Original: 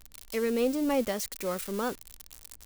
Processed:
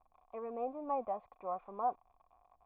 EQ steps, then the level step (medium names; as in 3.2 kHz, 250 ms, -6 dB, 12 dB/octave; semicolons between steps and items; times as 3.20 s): cascade formant filter a; +8.0 dB